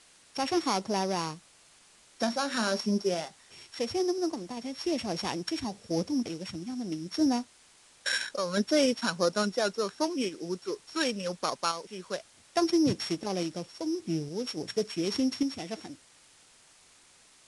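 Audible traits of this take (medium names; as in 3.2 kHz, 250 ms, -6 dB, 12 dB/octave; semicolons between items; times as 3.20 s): a buzz of ramps at a fixed pitch in blocks of 8 samples; random-step tremolo; a quantiser's noise floor 10-bit, dither triangular; Vorbis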